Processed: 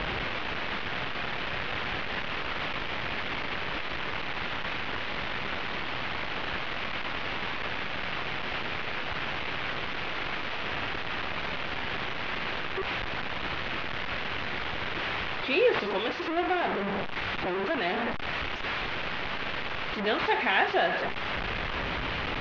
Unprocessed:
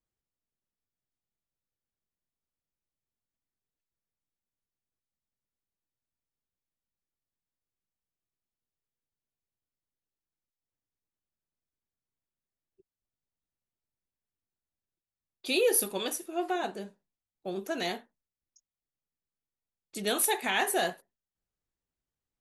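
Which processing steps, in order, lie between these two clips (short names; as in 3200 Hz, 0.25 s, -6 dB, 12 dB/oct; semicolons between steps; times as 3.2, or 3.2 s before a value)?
delta modulation 32 kbps, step -25.5 dBFS; LPF 2900 Hz 24 dB/oct; low shelf 390 Hz -6.5 dB; gain +5 dB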